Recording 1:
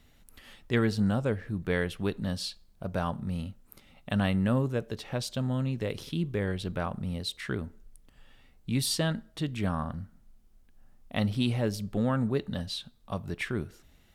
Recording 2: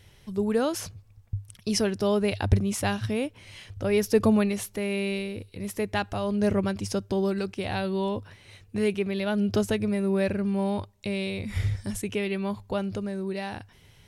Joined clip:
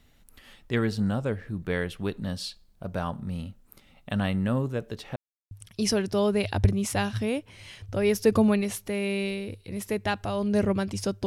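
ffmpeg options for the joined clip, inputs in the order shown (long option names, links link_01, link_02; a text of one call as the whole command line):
ffmpeg -i cue0.wav -i cue1.wav -filter_complex "[0:a]apad=whole_dur=11.26,atrim=end=11.26,asplit=2[link_01][link_02];[link_01]atrim=end=5.16,asetpts=PTS-STARTPTS,afade=type=out:start_time=5.156:duration=0.004:curve=hsin[link_03];[link_02]atrim=start=5.16:end=5.51,asetpts=PTS-STARTPTS,volume=0[link_04];[1:a]atrim=start=1.39:end=7.14,asetpts=PTS-STARTPTS,afade=type=in:duration=0.004:curve=hsin[link_05];[link_03][link_04][link_05]concat=n=3:v=0:a=1" out.wav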